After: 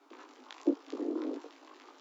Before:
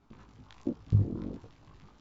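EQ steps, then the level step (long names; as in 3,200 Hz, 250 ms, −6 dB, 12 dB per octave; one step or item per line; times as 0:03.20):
Butterworth high-pass 270 Hz 96 dB per octave
+7.0 dB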